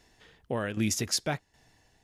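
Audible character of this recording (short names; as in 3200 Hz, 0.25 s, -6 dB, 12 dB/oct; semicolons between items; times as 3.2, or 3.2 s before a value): tremolo saw down 1.3 Hz, depth 70%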